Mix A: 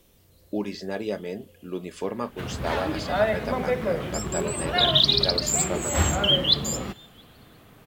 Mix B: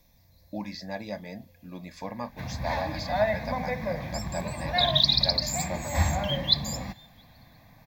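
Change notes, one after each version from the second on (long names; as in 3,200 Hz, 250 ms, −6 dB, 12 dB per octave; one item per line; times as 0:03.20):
master: add phaser with its sweep stopped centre 2,000 Hz, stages 8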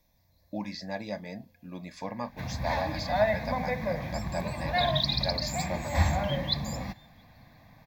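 second sound −7.5 dB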